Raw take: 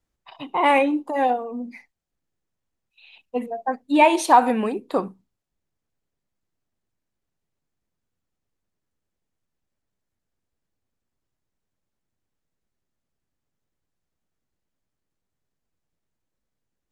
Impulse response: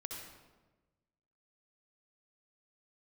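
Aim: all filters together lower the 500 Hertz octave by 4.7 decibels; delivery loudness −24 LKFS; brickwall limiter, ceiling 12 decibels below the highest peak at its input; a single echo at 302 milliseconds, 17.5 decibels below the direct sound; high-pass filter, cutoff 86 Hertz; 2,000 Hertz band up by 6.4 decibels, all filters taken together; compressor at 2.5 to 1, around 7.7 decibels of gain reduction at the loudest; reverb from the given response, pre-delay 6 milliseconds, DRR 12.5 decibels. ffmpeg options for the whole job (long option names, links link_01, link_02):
-filter_complex "[0:a]highpass=86,equalizer=frequency=500:width_type=o:gain=-6.5,equalizer=frequency=2000:width_type=o:gain=8,acompressor=threshold=-20dB:ratio=2.5,alimiter=limit=-21dB:level=0:latency=1,aecho=1:1:302:0.133,asplit=2[link_01][link_02];[1:a]atrim=start_sample=2205,adelay=6[link_03];[link_02][link_03]afir=irnorm=-1:irlink=0,volume=-11dB[link_04];[link_01][link_04]amix=inputs=2:normalize=0,volume=7dB"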